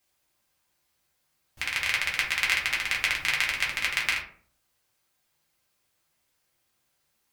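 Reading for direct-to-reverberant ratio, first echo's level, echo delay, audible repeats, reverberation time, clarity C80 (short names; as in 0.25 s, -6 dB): -4.0 dB, none, none, none, 0.50 s, 11.5 dB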